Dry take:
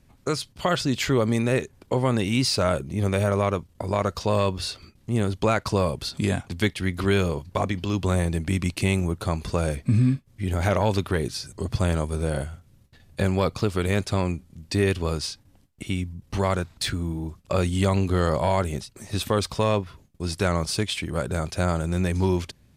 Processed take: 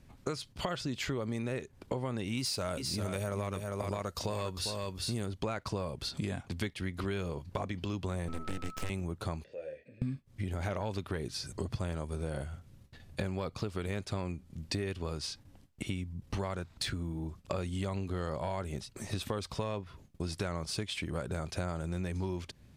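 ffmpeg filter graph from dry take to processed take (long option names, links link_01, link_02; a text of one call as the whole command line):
ffmpeg -i in.wav -filter_complex "[0:a]asettb=1/sr,asplit=3[link_01][link_02][link_03];[link_01]atrim=end=2.374[link_04];[link_02]atrim=start=2.37:end=5.26,asetpts=PTS-STARTPTS,afade=type=in:duration=0.004:curve=qsin,afade=type=out:start_time=2.886:duration=0.004:curve=qsin,aemphasis=mode=production:type=50kf,volume=12.5dB,asoftclip=hard,volume=-12.5dB,aecho=1:1:401:0.422,atrim=end_sample=127449[link_05];[link_03]atrim=start=5.256[link_06];[link_04][link_05]acrossfade=duration=0.004:curve1=hsin:curve2=qsin[link_07];[link_07][link_06]acrossfade=duration=0.004:curve1=qsin:curve2=hsin,asettb=1/sr,asplit=3[link_08][link_09][link_10];[link_08]atrim=end=8.284[link_11];[link_09]atrim=start=8.28:end=8.9,asetpts=PTS-STARTPTS,afade=type=in:duration=0.004:curve=qsin,afade=type=out:start_time=0.616:duration=0.004:curve=qsin,aeval=exprs='abs(val(0))':channel_layout=same,aeval=exprs='val(0)+0.0158*sin(2*PI*1300*n/s)':channel_layout=same[link_12];[link_10]atrim=start=8.896[link_13];[link_11][link_12]acrossfade=duration=0.004:curve1=hsin:curve2=qsin[link_14];[link_14][link_13]acrossfade=duration=0.004:curve1=qsin:curve2=hsin,asettb=1/sr,asplit=3[link_15][link_16][link_17];[link_15]atrim=end=9.444[link_18];[link_16]atrim=start=9.44:end=10.02,asetpts=PTS-STARTPTS,afade=type=in:duration=0.004:curve=qsin,afade=type=out:start_time=0.576:duration=0.004:curve=qsin,asplit=2[link_19][link_20];[link_20]adelay=27,volume=-6dB[link_21];[link_19][link_21]amix=inputs=2:normalize=0,atrim=end_sample=25578,acompressor=threshold=-32dB:ratio=3:attack=3.2:release=140:knee=1:detection=peak,asplit=3[link_22][link_23][link_24];[link_22]bandpass=frequency=530:width_type=q:width=8,volume=0dB[link_25];[link_23]bandpass=frequency=1840:width_type=q:width=8,volume=-6dB[link_26];[link_24]bandpass=frequency=2480:width_type=q:width=8,volume=-9dB[link_27];[link_25][link_26][link_27]amix=inputs=3:normalize=0[link_28];[link_17]atrim=start=10.016[link_29];[link_18][link_28]acrossfade=duration=0.004:curve1=hsin:curve2=qsin[link_30];[link_30][link_29]acrossfade=duration=0.004:curve1=qsin:curve2=hsin,highshelf=frequency=8200:gain=-5.5,acompressor=threshold=-33dB:ratio=6" out.wav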